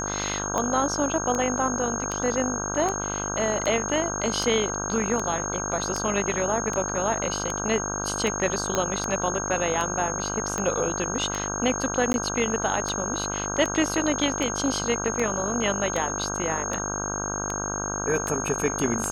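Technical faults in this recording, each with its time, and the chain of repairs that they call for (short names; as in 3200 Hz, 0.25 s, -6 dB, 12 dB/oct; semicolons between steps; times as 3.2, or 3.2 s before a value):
buzz 50 Hz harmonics 32 -32 dBFS
tick 78 rpm -14 dBFS
tone 6500 Hz -30 dBFS
8.75 pop -9 dBFS
12.13–12.14 gap 11 ms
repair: de-click; de-hum 50 Hz, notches 32; notch 6500 Hz, Q 30; interpolate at 12.13, 11 ms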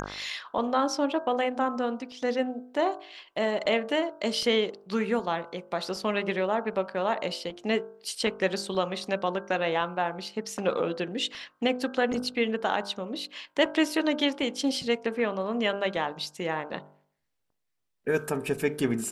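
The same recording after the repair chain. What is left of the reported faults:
8.75 pop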